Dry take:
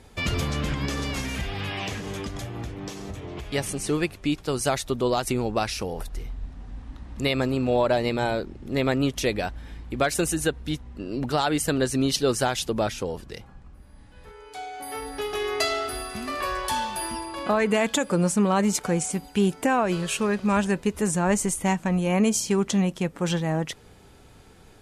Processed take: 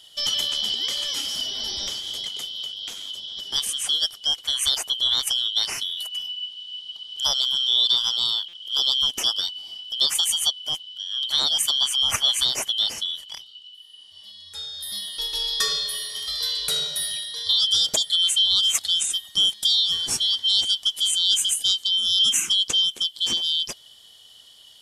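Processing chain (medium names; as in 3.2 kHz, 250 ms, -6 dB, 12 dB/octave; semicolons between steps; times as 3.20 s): four frequency bands reordered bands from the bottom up 3412; treble shelf 4.7 kHz +9.5 dB; buffer glitch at 8.48 s, samples 256, times 8; trim -2 dB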